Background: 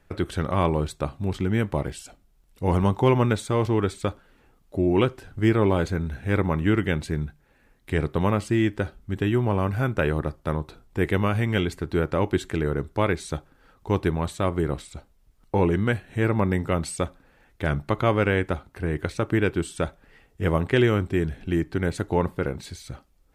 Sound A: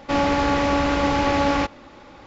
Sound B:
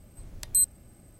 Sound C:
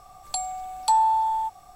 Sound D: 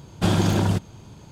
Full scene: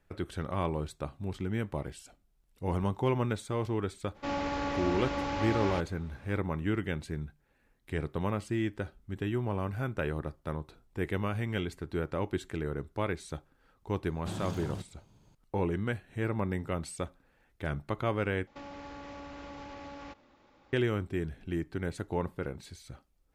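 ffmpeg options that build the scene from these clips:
-filter_complex "[1:a]asplit=2[a][b];[0:a]volume=-9.5dB[c];[b]acompressor=threshold=-23dB:ratio=6:attack=3.2:release=140:knee=1:detection=peak[d];[c]asplit=2[e][f];[e]atrim=end=18.474[g];[d]atrim=end=2.26,asetpts=PTS-STARTPTS,volume=-18dB[h];[f]atrim=start=20.726[i];[a]atrim=end=2.26,asetpts=PTS-STARTPTS,volume=-13dB,afade=t=in:d=0.02,afade=t=out:st=2.24:d=0.02,adelay=4140[j];[4:a]atrim=end=1.31,asetpts=PTS-STARTPTS,volume=-18dB,afade=t=in:d=0.004:c=hsin,afade=t=out:st=1.306:d=0.004:c=hsin,adelay=14040[k];[g][h]acrossfade=d=0.004:c1=hsin:c2=hsin[l];[l][i]acrossfade=d=0.004:c1=hsin:c2=hsin[m];[m][j][k]amix=inputs=3:normalize=0"

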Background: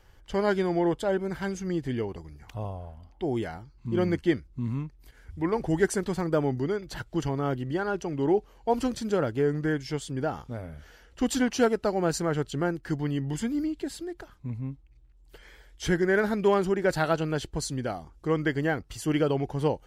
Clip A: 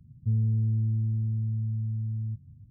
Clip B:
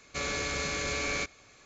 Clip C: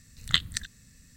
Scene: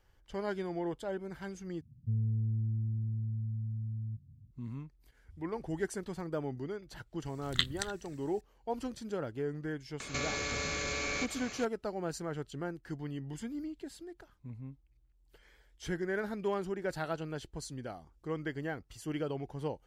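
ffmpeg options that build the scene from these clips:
-filter_complex "[0:a]volume=-11dB[a];[3:a]asplit=2[b][c];[c]adelay=239.1,volume=-20dB,highshelf=f=4k:g=-5.38[d];[b][d]amix=inputs=2:normalize=0[e];[2:a]acompressor=mode=upward:threshold=-36dB:ratio=2.5:attack=93:release=27:knee=2.83:detection=peak[f];[a]asplit=2[g][h];[g]atrim=end=1.814[i];[1:a]atrim=end=2.7,asetpts=PTS-STARTPTS,volume=-6.5dB[j];[h]atrim=start=4.506[k];[e]atrim=end=1.16,asetpts=PTS-STARTPTS,volume=-6dB,afade=t=in:d=0.004:c=hsin,afade=t=out:st=1.156:d=0.004:c=hsin,adelay=7250[l];[f]atrim=end=1.65,asetpts=PTS-STARTPTS,volume=-4.5dB,afade=t=in:d=0.004:c=hsin,afade=t=out:st=1.646:d=0.004:c=hsin,adelay=10000[m];[i][j]acrossfade=d=0.004:c1=hsin:c2=hsin[n];[n][k]acrossfade=d=0.004:c1=hsin:c2=hsin[o];[o][l][m]amix=inputs=3:normalize=0"

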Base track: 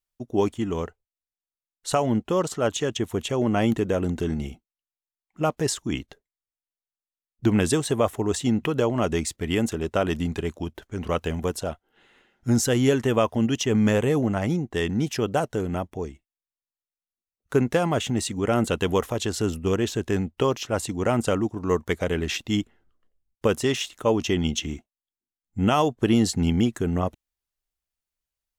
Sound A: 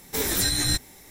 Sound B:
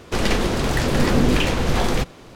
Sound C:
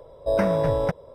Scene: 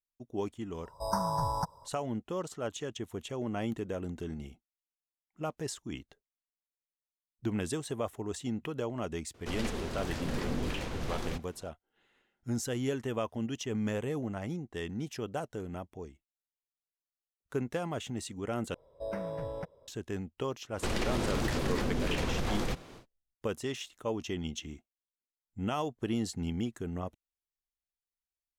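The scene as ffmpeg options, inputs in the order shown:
-filter_complex "[3:a]asplit=2[a][b];[2:a]asplit=2[c][d];[0:a]volume=-12.5dB[e];[a]firequalizer=gain_entry='entry(140,0);entry(350,-12);entry(550,-12);entry(900,13);entry(2400,-29);entry(4800,13)':delay=0.05:min_phase=1[f];[d]acompressor=threshold=-20dB:ratio=6:attack=3.2:release=140:knee=1:detection=peak[g];[e]asplit=2[h][i];[h]atrim=end=18.744[j];[b]atrim=end=1.14,asetpts=PTS-STARTPTS,volume=-15.5dB[k];[i]atrim=start=19.876[l];[f]atrim=end=1.14,asetpts=PTS-STARTPTS,volume=-8dB,afade=t=in:d=0.004:c=hsin,afade=t=out:st=1.136:d=0.004:c=hsin,adelay=740[m];[c]atrim=end=2.35,asetpts=PTS-STARTPTS,volume=-16.5dB,afade=t=in:d=0.004:c=hsin,afade=t=out:st=2.346:d=0.004:c=hsin,adelay=9340[n];[g]atrim=end=2.35,asetpts=PTS-STARTPTS,volume=-7dB,afade=t=in:d=0.1,afade=t=out:st=2.25:d=0.1,adelay=20710[o];[j][k]acrossfade=d=0.004:c1=hsin:c2=hsin[p];[p][l]acrossfade=d=0.004:c1=hsin:c2=hsin[q];[q][m][n][o]amix=inputs=4:normalize=0"

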